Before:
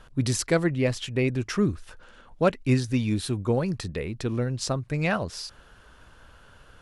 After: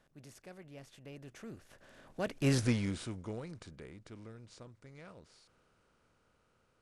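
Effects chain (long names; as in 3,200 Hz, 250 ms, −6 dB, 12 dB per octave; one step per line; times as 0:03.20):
compressor on every frequency bin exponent 0.6
source passing by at 0:02.60, 32 m/s, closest 3.8 metres
level −5.5 dB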